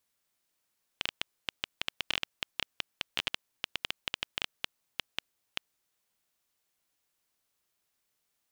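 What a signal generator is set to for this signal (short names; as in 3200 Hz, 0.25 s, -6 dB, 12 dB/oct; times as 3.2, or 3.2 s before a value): random clicks 8.6/s -11.5 dBFS 4.65 s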